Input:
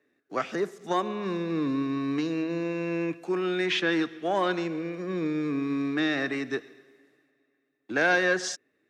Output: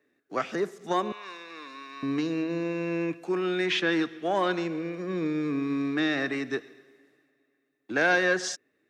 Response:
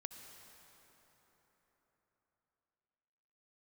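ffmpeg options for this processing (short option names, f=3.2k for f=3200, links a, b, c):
-filter_complex "[0:a]asettb=1/sr,asplit=3[a][b][c];[a]atrim=end=1.124[d];[b]atrim=start=1.12:end=2.03,asetpts=PTS-STARTPTS,afade=t=in:d=0.004:c=qsin,afade=t=out:st=0.906:d=0.004:c=qsin,highpass=1.1k[e];[c]atrim=start=2.026[f];[d][e]acrossfade=d=0.004:c1=hsin:c2=qsin[g];[g][f]acrossfade=d=0.004:c1=qsin:c2=hsin"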